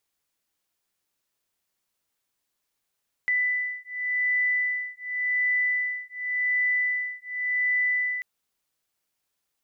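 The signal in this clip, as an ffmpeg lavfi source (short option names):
-f lavfi -i "aevalsrc='0.0473*(sin(2*PI*1990*t)+sin(2*PI*1990.89*t))':d=4.94:s=44100"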